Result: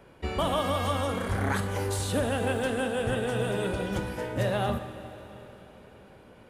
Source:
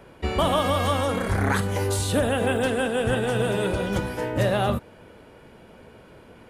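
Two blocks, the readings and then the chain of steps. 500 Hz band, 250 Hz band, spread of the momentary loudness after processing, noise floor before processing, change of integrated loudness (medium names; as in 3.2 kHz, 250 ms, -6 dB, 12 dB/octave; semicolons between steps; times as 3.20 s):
-5.0 dB, -5.0 dB, 15 LU, -50 dBFS, -5.0 dB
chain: plate-style reverb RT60 4.2 s, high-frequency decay 0.95×, DRR 9.5 dB; trim -5.5 dB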